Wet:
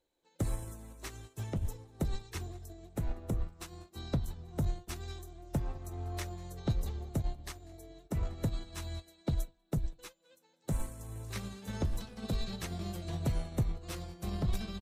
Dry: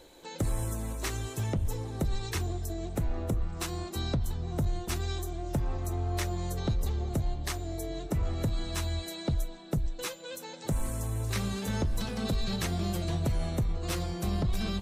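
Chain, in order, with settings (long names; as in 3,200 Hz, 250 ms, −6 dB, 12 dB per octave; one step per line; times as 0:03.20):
single-tap delay 194 ms −20.5 dB
expander for the loud parts 2.5 to 1, over −43 dBFS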